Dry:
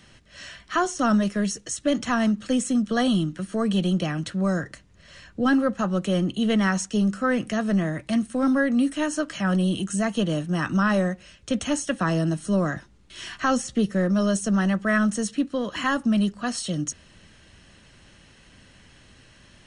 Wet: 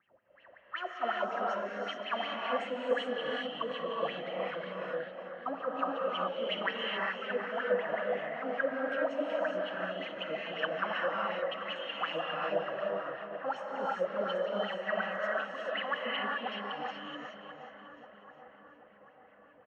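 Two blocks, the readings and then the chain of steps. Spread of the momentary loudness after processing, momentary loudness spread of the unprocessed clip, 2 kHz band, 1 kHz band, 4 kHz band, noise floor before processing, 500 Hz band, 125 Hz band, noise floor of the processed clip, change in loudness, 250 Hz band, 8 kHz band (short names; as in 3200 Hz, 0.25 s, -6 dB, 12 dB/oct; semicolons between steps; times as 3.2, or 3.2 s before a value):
8 LU, 7 LU, -5.5 dB, -5.0 dB, -5.0 dB, -54 dBFS, -4.5 dB, -25.5 dB, -60 dBFS, -10.5 dB, -22.0 dB, under -30 dB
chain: G.711 law mismatch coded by mu; LPF 5000 Hz 12 dB/oct; low-pass opened by the level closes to 660 Hz, open at -18 dBFS; in parallel at -11 dB: overloaded stage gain 19.5 dB; on the sum: outdoor echo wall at 69 m, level -8 dB; wah 5.4 Hz 500–3000 Hz, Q 10; on a send: split-band echo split 1800 Hz, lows 0.787 s, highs 0.362 s, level -12 dB; on the sum: non-linear reverb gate 0.45 s rising, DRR -2.5 dB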